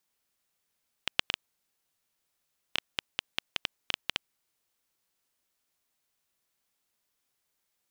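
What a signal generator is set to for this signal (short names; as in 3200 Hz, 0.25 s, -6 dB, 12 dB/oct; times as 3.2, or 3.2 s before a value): random clicks 4.4/s -9 dBFS 3.62 s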